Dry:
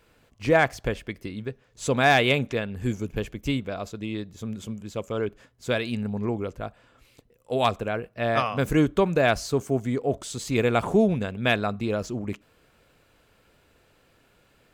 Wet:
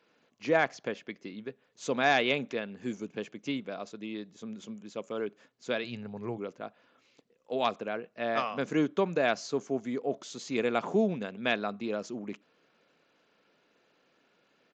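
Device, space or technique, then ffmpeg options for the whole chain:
Bluetooth headset: -filter_complex "[0:a]asettb=1/sr,asplit=3[s0][s1][s2];[s0]atrim=end=5.844[s3];[s1]atrim=start=5.84:end=6.38,asetpts=PTS-STARTPTS,afade=t=in:d=0.004:c=qsin,afade=t=out:st=0.536:d=0.004:c=qsin,lowshelf=f=170:t=q:w=3:g=6.5[s4];[s2]atrim=start=6.376[s5];[s3][s4]acrossfade=d=0.004:c1=hsin:c2=qsin[s6];[s6][s5]acrossfade=d=0.004:c1=qsin:c2=hsin,highpass=f=180:w=0.5412,highpass=f=180:w=1.3066,aresample=16000,aresample=44100,volume=0.501" -ar 16000 -c:a sbc -b:a 64k

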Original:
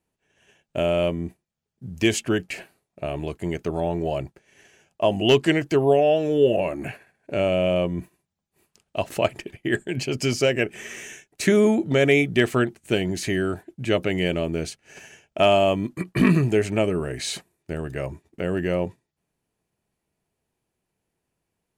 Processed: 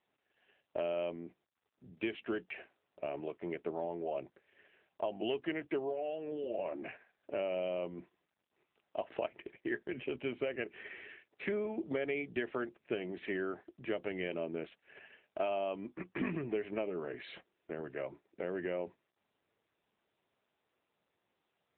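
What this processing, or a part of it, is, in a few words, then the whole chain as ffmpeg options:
voicemail: -af "highpass=310,lowpass=2800,acompressor=threshold=0.0631:ratio=6,volume=0.422" -ar 8000 -c:a libopencore_amrnb -b:a 7950

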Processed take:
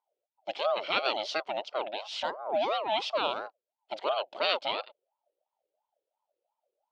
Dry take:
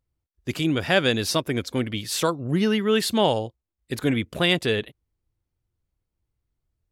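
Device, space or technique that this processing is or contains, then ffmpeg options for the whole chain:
voice changer toy: -af "aeval=exprs='val(0)*sin(2*PI*690*n/s+690*0.4/2.9*sin(2*PI*2.9*n/s))':c=same,highpass=560,equalizer=f=610:t=q:w=4:g=8,equalizer=f=1100:t=q:w=4:g=-7,equalizer=f=1800:t=q:w=4:g=-8,equalizer=f=3100:t=q:w=4:g=4,lowpass=f=4500:w=0.5412,lowpass=f=4500:w=1.3066,volume=0.668"

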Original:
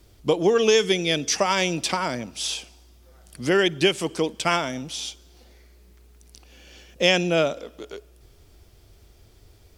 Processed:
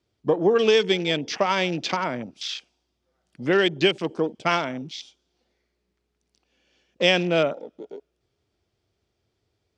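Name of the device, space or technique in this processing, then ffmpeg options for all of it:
over-cleaned archive recording: -filter_complex "[0:a]asettb=1/sr,asplit=3[s0][s1][s2];[s0]atrim=end=1.044[s3];[s1]atrim=start=1.04:end=1.7,asetpts=PTS-STARTPTS,afade=t=in:d=0.004:c=qsin,afade=t=out:st=0.656:d=0.004:c=qsin,equalizer=f=7000:w=0.74:g=-4.5[s4];[s2]atrim=start=1.696[s5];[s3][s4]acrossfade=d=0.004:c1=hsin:c2=qsin[s6];[s6][s5]acrossfade=d=0.004:c1=qsin:c2=hsin,highpass=110,lowpass=5700,afwtdn=0.02"

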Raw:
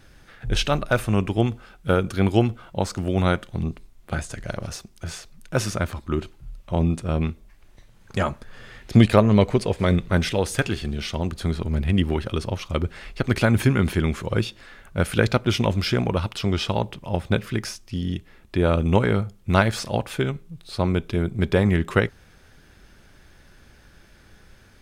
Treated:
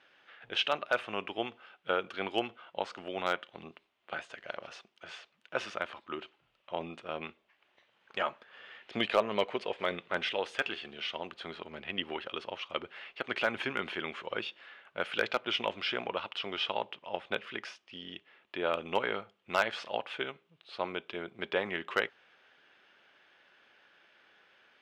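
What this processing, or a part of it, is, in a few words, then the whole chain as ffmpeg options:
megaphone: -af "highpass=560,lowpass=2700,equalizer=f=3000:t=o:w=0.59:g=9,asoftclip=type=hard:threshold=0.316,volume=0.501"

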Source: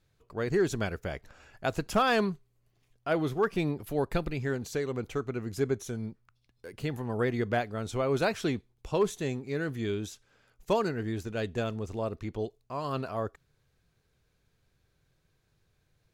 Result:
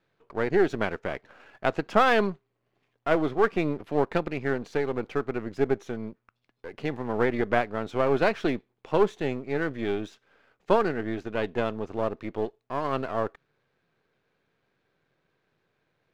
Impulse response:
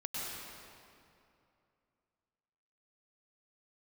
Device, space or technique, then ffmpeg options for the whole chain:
crystal radio: -af "highpass=240,lowpass=2600,aeval=exprs='if(lt(val(0),0),0.447*val(0),val(0))':c=same,volume=2.37"

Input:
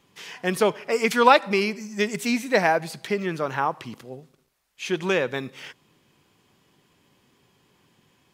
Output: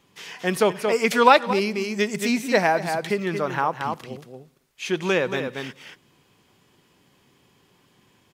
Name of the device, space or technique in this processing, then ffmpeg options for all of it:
ducked delay: -filter_complex "[0:a]asplit=3[s0][s1][s2];[s1]adelay=227,volume=0.631[s3];[s2]apad=whole_len=377562[s4];[s3][s4]sidechaincompress=threshold=0.0398:ratio=8:attack=16:release=211[s5];[s0][s5]amix=inputs=2:normalize=0,asettb=1/sr,asplit=3[s6][s7][s8];[s6]atrim=end=1.534[s9];[s7]atrim=start=1.53:end=3.01,asetpts=PTS-STARTPTS,afade=t=in:d=0.004:c=qsin,afade=t=out:st=1.476:d=0.004:c=qsin,adynamicequalizer=threshold=0.0224:dfrequency=1700:dqfactor=0.7:tfrequency=1700:tqfactor=0.7:attack=5:release=100:ratio=0.375:range=2:mode=cutabove:tftype=bell[s10];[s8]atrim=start=3.006[s11];[s9][s10]acrossfade=d=0.004:c1=hsin:c2=qsin[s12];[s12][s11]acrossfade=d=0.004:c1=qsin:c2=hsin,volume=1.12"

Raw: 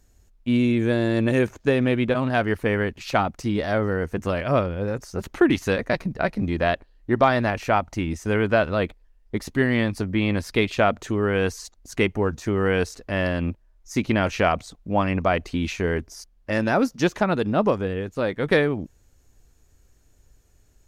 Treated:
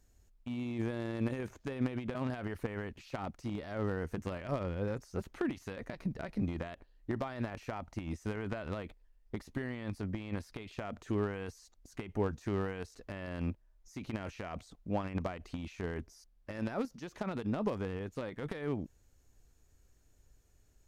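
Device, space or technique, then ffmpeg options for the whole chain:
de-esser from a sidechain: -filter_complex "[0:a]asplit=2[s0][s1];[s1]highpass=4000,apad=whole_len=920539[s2];[s0][s2]sidechaincompress=threshold=0.00355:ratio=5:attack=0.75:release=28,volume=0.398"

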